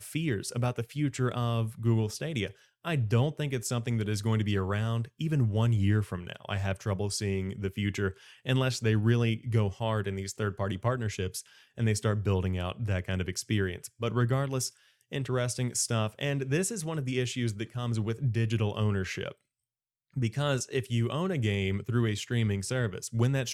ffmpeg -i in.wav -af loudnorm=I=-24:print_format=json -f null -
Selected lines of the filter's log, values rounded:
"input_i" : "-30.4",
"input_tp" : "-13.3",
"input_lra" : "2.1",
"input_thresh" : "-40.5",